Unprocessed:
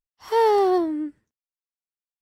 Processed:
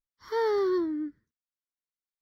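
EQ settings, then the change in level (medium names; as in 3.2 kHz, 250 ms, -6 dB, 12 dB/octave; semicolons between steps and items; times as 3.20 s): treble shelf 4.4 kHz -6.5 dB; static phaser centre 2.7 kHz, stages 6; -2.5 dB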